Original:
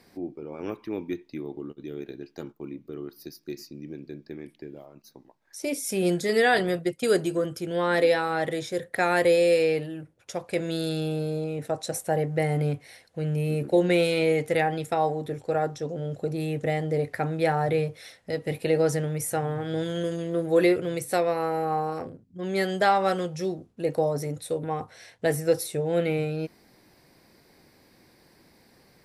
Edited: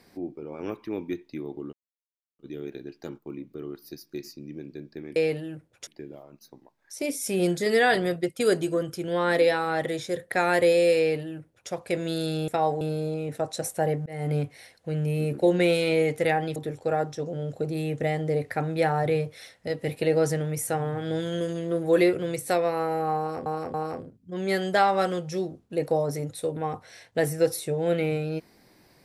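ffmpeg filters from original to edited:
-filter_complex "[0:a]asplit=10[a][b][c][d][e][f][g][h][i][j];[a]atrim=end=1.73,asetpts=PTS-STARTPTS,afade=t=out:st=1.726:d=0.004:c=hsin,apad=pad_dur=0.66[k];[b]atrim=start=1.73:end=4.502,asetpts=PTS-STARTPTS,afade=t=in:d=0.004:c=hsin[l];[c]atrim=start=9.618:end=10.332[m];[d]atrim=start=4.498:end=11.112[n];[e]atrim=start=14.858:end=15.192[o];[f]atrim=start=11.108:end=12.36,asetpts=PTS-STARTPTS,afade=t=out:st=1.248:d=0.004:c=hsin[p];[g]atrim=start=12.36:end=14.862,asetpts=PTS-STARTPTS,afade=t=in:d=0.28[q];[h]atrim=start=15.188:end=22.092[r];[i]atrim=start=21.808:end=22.092[s];[j]atrim=start=21.808[t];[k][l]concat=n=2:v=0:a=1[u];[u][m]acrossfade=d=0.004:c1=hsin:c2=hsin[v];[v][n]acrossfade=d=0.004:c1=hsin:c2=hsin[w];[w][o]acrossfade=d=0.004:c1=hsin:c2=hsin[x];[p][q]concat=n=2:v=0:a=1[y];[x][y]acrossfade=d=0.004:c1=hsin:c2=hsin[z];[z][r]acrossfade=d=0.004:c1=hsin:c2=hsin[aa];[aa][s]acrossfade=d=0.004:c1=hsin:c2=hsin[ab];[ab][t]acrossfade=d=0.004:c1=hsin:c2=hsin"

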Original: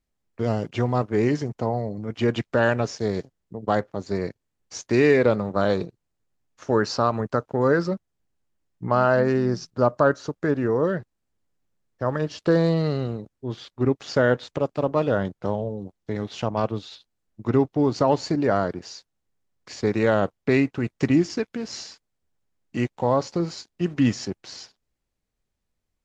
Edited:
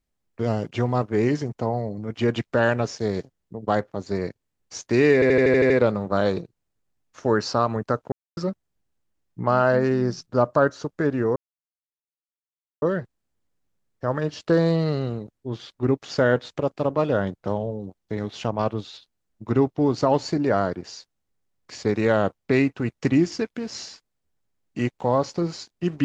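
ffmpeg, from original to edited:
-filter_complex "[0:a]asplit=11[a][b][c][d][e][f][g][h][i][j][k];[a]atrim=end=5.222[l];[b]atrim=start=5.138:end=5.222[m];[c]atrim=start=5.138:end=5.222[n];[d]atrim=start=5.138:end=5.222[o];[e]atrim=start=5.138:end=5.222[p];[f]atrim=start=5.138:end=5.222[q];[g]atrim=start=5.138:end=5.222[r];[h]atrim=start=5.138:end=7.56,asetpts=PTS-STARTPTS,afade=t=out:st=2.418:d=0.004:c=hsin[s];[i]atrim=start=7.56:end=7.81,asetpts=PTS-STARTPTS,volume=0[t];[j]atrim=start=7.81:end=10.8,asetpts=PTS-STARTPTS,afade=t=in:d=0.004:c=hsin,afade=t=out:st=2.986:d=0.004:c=hsin,apad=pad_dur=1.46[u];[k]atrim=start=10.8,asetpts=PTS-STARTPTS,afade=t=in:d=0.004:c=hsin[v];[l][m]acrossfade=d=0.004:c1=hsin:c2=hsin[w];[w][n]acrossfade=d=0.004:c1=hsin:c2=hsin[x];[x][o]acrossfade=d=0.004:c1=hsin:c2=hsin[y];[y][p]acrossfade=d=0.004:c1=hsin:c2=hsin[z];[z][q]acrossfade=d=0.004:c1=hsin:c2=hsin[aa];[aa][r]acrossfade=d=0.004:c1=hsin:c2=hsin[ab];[s][t][u][v]concat=n=4:v=0:a=1[ac];[ab][ac]acrossfade=d=0.004:c1=hsin:c2=hsin"

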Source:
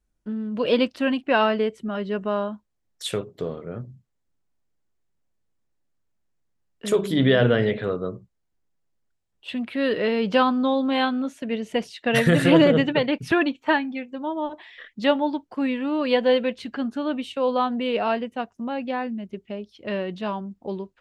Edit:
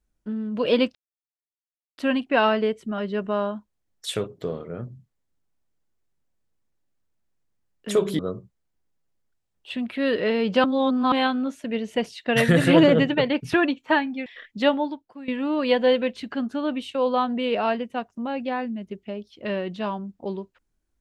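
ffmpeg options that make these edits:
-filter_complex "[0:a]asplit=7[a][b][c][d][e][f][g];[a]atrim=end=0.95,asetpts=PTS-STARTPTS,afade=t=out:st=0.946:d=0.004:c=hsin,apad=pad_dur=1.03[h];[b]atrim=start=0.95:end=7.162,asetpts=PTS-STARTPTS,afade=t=in:d=0.004:c=hsin[i];[c]atrim=start=7.968:end=10.422[j];[d]atrim=start=10.418:end=10.902,asetpts=PTS-STARTPTS,areverse[k];[e]atrim=start=10.898:end=14.042[l];[f]atrim=start=14.678:end=15.7,asetpts=PTS-STARTPTS,afade=t=out:st=0.502:d=0.52:c=qua:silence=0.158489[m];[g]atrim=start=15.7,asetpts=PTS-STARTPTS,afade=t=in:d=0.004:c=hsin:silence=0.158489[n];[h][i]concat=n=2:v=0:a=1[o];[o][j]acrossfade=d=0.004:c1=hsin:c2=hsin[p];[p][k]acrossfade=d=0.004:c1=hsin:c2=hsin[q];[q][l]acrossfade=d=0.004:c1=hsin:c2=hsin[r];[m][n]concat=n=2:v=0:a=1[s];[r][s]acrossfade=d=0.004:c1=hsin:c2=hsin"

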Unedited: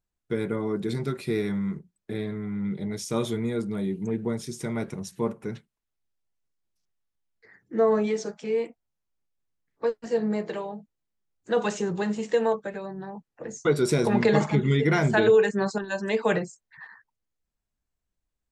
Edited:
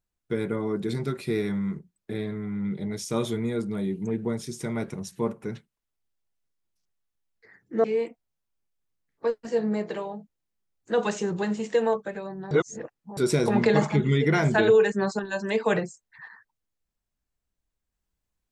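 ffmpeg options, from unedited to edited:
-filter_complex "[0:a]asplit=4[a][b][c][d];[a]atrim=end=7.842[e];[b]atrim=start=8.428:end=13.102[f];[c]atrim=start=13.098:end=13.762,asetpts=PTS-STARTPTS,areverse[g];[d]atrim=start=13.758[h];[e][f]acrossfade=d=0.004:c1=hsin:c2=hsin[i];[i][g]acrossfade=d=0.004:c1=hsin:c2=hsin[j];[j][h]acrossfade=d=0.004:c1=hsin:c2=hsin"

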